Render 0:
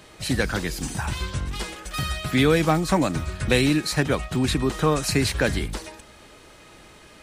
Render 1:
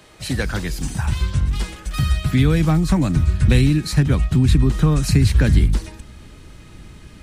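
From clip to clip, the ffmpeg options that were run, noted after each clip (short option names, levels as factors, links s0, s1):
-filter_complex "[0:a]asubboost=boost=6.5:cutoff=220,acrossover=split=130[s0][s1];[s1]acompressor=threshold=0.141:ratio=2.5[s2];[s0][s2]amix=inputs=2:normalize=0"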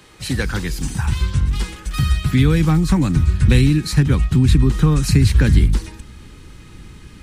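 -af "equalizer=f=640:w=5.4:g=-11,volume=1.19"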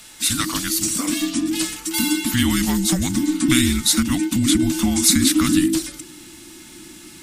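-af "afreqshift=-370,crystalizer=i=8:c=0,volume=0.501"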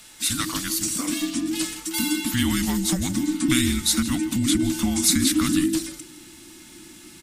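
-af "aecho=1:1:163:0.168,volume=0.631"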